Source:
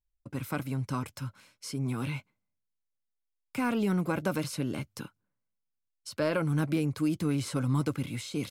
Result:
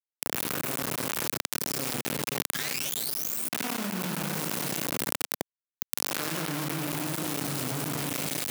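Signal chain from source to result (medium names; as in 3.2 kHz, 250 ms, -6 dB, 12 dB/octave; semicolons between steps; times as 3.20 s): spectral blur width 362 ms; reverberation RT60 3.5 s, pre-delay 8 ms, DRR -3 dB; painted sound rise, 2.54–3.49 s, 1.6–9.9 kHz -39 dBFS; peaking EQ 530 Hz -11 dB 1.7 oct; hum notches 60/120/180/240/300 Hz; in parallel at -10.5 dB: decimation with a swept rate 35×, swing 60% 0.36 Hz; on the sum: upward compressor, threshold -28 dBFS; bit crusher 5-bit; high-pass 190 Hz 12 dB/octave; treble shelf 11 kHz +8.5 dB; level flattener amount 100%; trim -6 dB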